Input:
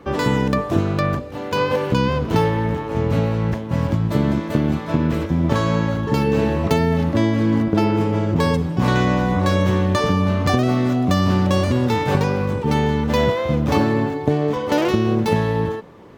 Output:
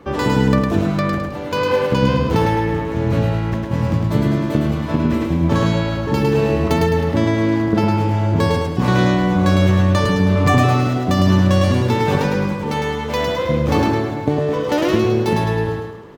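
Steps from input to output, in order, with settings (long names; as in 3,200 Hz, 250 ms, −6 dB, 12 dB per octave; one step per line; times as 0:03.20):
0:10.35–0:10.87: comb filter 6.9 ms, depth 78%
0:12.53–0:13.41: low-shelf EQ 250 Hz −9.5 dB
repeating echo 106 ms, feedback 44%, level −3.5 dB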